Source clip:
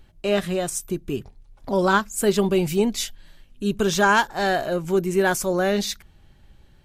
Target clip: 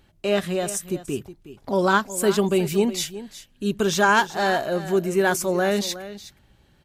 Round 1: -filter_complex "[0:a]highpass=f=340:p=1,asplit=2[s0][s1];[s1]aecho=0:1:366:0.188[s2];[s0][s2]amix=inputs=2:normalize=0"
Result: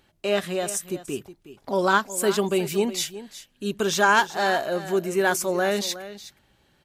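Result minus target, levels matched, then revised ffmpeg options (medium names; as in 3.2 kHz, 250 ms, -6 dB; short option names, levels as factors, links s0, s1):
125 Hz band -4.0 dB
-filter_complex "[0:a]highpass=f=100:p=1,asplit=2[s0][s1];[s1]aecho=0:1:366:0.188[s2];[s0][s2]amix=inputs=2:normalize=0"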